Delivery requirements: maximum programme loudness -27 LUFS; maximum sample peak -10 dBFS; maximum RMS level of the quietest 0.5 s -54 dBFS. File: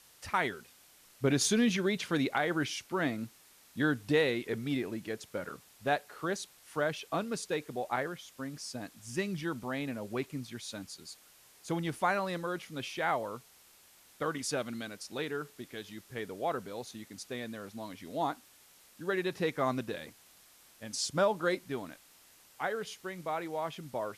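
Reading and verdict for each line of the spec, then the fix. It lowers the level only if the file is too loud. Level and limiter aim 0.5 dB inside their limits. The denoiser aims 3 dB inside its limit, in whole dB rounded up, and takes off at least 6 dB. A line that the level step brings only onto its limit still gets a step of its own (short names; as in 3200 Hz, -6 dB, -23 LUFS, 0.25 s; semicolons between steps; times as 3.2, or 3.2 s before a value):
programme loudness -34.5 LUFS: OK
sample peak -17.0 dBFS: OK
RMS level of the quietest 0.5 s -61 dBFS: OK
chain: none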